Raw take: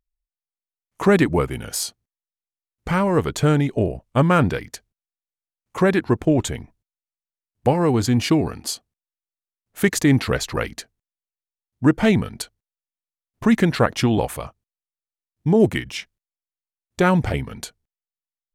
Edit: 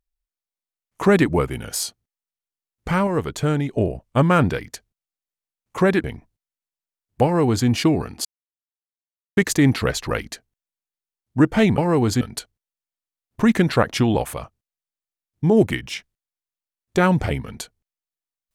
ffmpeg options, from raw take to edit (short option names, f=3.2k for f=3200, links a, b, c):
-filter_complex "[0:a]asplit=8[a][b][c][d][e][f][g][h];[a]atrim=end=3.072[i];[b]atrim=start=3.068:end=3.742,asetpts=PTS-STARTPTS,volume=-3.5dB[j];[c]atrim=start=3.738:end=6.042[k];[d]atrim=start=6.498:end=8.71,asetpts=PTS-STARTPTS,afade=t=out:st=2.208:d=0.004:c=hsin[l];[e]atrim=start=8.71:end=9.83,asetpts=PTS-STARTPTS,volume=0[m];[f]atrim=start=9.83:end=12.242,asetpts=PTS-STARTPTS,afade=t=in:d=0.004:c=hsin[n];[g]atrim=start=7.698:end=8.132[o];[h]atrim=start=12.238[p];[i][j]acrossfade=d=0.004:c1=hsin:c2=hsin[q];[q][k]acrossfade=d=0.004:c1=hsin:c2=hsin[r];[l][m][n]concat=n=3:v=0:a=1[s];[r][s]acrossfade=d=0.004:c1=hsin:c2=hsin[t];[t][o]acrossfade=d=0.004:c1=hsin:c2=hsin[u];[u][p]acrossfade=d=0.004:c1=hsin:c2=hsin"